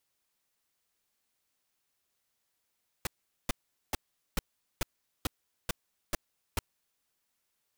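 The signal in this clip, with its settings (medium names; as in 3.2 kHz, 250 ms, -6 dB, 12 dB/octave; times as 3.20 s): noise bursts pink, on 0.02 s, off 0.42 s, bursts 9, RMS -29 dBFS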